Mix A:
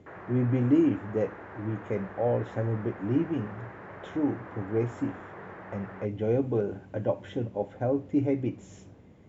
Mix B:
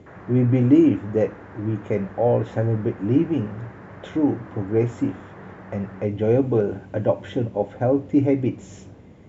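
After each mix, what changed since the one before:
speech +7.5 dB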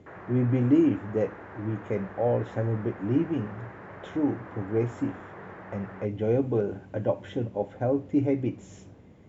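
speech -6.0 dB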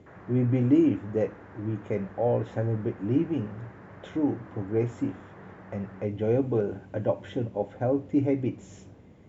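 background -6.0 dB

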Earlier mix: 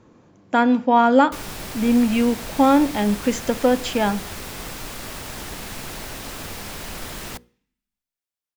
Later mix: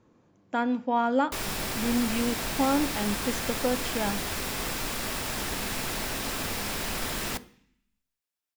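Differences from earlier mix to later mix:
speech -10.0 dB; background: send +11.5 dB

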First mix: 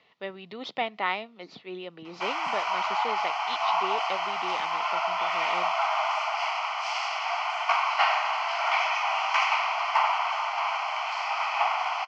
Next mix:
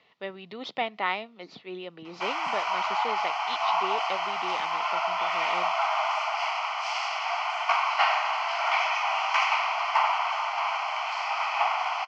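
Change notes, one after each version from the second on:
no change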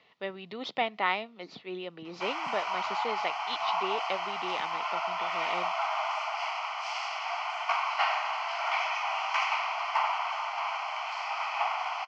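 background -4.5 dB

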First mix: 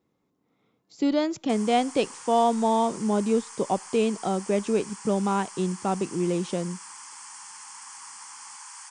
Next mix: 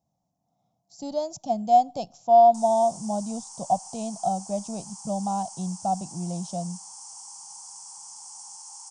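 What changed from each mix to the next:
background: entry +1.05 s; master: add FFT filter 170 Hz 0 dB, 430 Hz -23 dB, 700 Hz +9 dB, 1.1 kHz -13 dB, 1.9 kHz -28 dB, 3.9 kHz -9 dB, 5.7 kHz +4 dB, 10 kHz -1 dB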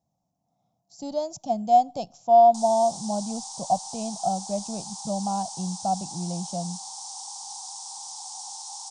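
background: remove static phaser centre 1.6 kHz, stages 4

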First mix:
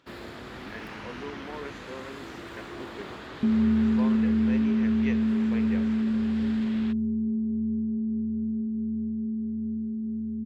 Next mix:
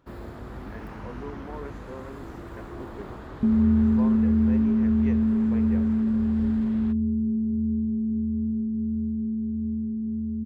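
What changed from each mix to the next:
master: remove frequency weighting D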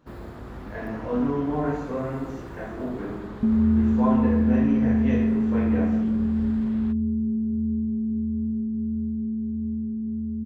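reverb: on, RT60 1.1 s

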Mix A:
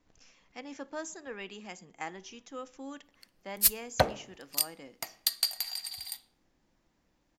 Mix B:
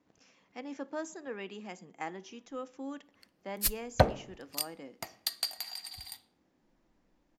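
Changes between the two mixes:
speech: add high-pass 190 Hz 12 dB/octave; master: add tilt EQ -2 dB/octave

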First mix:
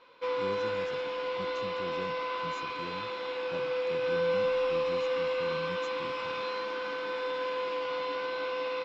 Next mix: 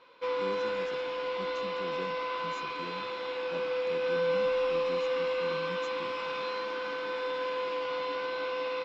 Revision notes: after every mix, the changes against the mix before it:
speech: add high-pass 160 Hz 24 dB/octave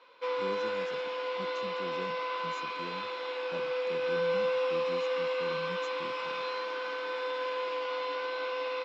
background: add high-pass 380 Hz 12 dB/octave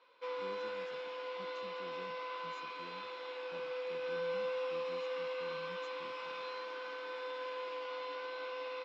speech -11.5 dB; background -8.0 dB

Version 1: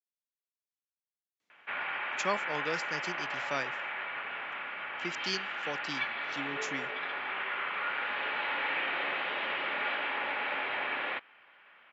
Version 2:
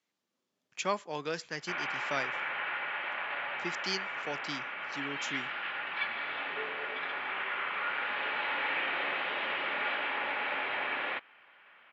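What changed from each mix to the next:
speech: entry -1.40 s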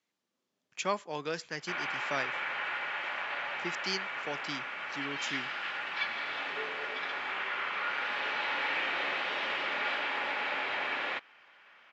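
background: remove low-pass 3.4 kHz 24 dB/octave

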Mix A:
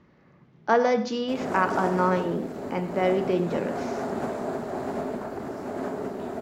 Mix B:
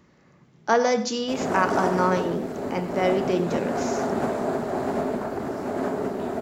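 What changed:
speech: remove distance through air 190 m; background +4.5 dB

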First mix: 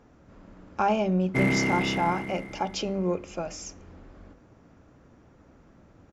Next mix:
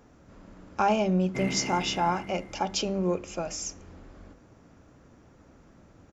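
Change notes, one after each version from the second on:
speech: add treble shelf 6.1 kHz +10.5 dB; background -9.5 dB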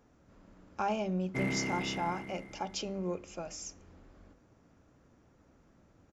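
speech -8.5 dB

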